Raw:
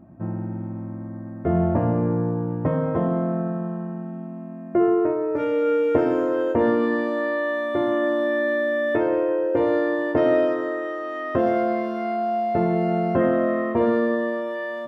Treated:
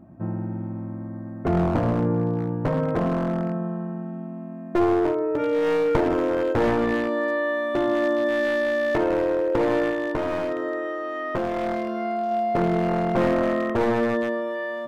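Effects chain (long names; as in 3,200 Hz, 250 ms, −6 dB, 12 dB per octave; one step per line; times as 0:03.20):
wavefolder on the positive side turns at −18 dBFS
0:09.89–0:12.31: downward compressor, threshold −22 dBFS, peak gain reduction 7 dB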